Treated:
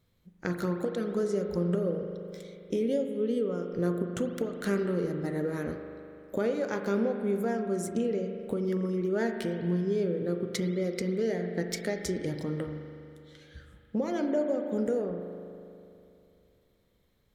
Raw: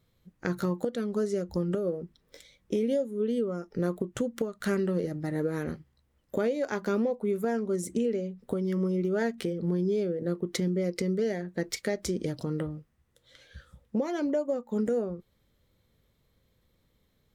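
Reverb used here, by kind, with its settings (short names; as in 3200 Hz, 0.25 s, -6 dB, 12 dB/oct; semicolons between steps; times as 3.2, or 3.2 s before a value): spring tank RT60 2.7 s, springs 40 ms, chirp 80 ms, DRR 5 dB; gain -1.5 dB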